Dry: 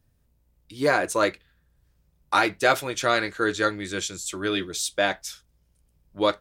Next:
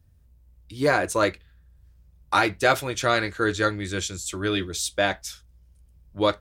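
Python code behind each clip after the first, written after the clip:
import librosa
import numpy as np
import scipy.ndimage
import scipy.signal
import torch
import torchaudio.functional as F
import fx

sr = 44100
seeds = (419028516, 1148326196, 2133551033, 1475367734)

y = fx.peak_eq(x, sr, hz=68.0, db=13.0, octaves=1.5)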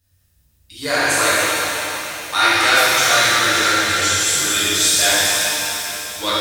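y = fx.tilt_shelf(x, sr, db=-9.5, hz=1200.0)
y = fx.notch(y, sr, hz=2300.0, q=26.0)
y = fx.rev_shimmer(y, sr, seeds[0], rt60_s=3.4, semitones=7, shimmer_db=-8, drr_db=-11.5)
y = F.gain(torch.from_numpy(y), -4.0).numpy()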